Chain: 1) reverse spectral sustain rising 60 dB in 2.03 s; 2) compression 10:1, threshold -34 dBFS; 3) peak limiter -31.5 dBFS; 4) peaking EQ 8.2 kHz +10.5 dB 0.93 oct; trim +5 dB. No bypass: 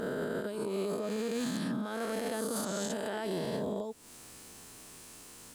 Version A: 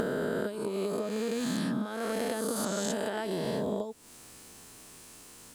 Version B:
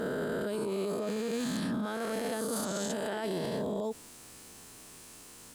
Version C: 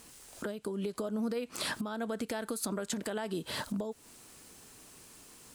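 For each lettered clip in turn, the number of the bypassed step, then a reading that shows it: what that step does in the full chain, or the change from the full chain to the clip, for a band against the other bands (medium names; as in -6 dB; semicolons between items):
3, mean gain reduction 1.5 dB; 2, mean gain reduction 12.0 dB; 1, 4 kHz band +3.5 dB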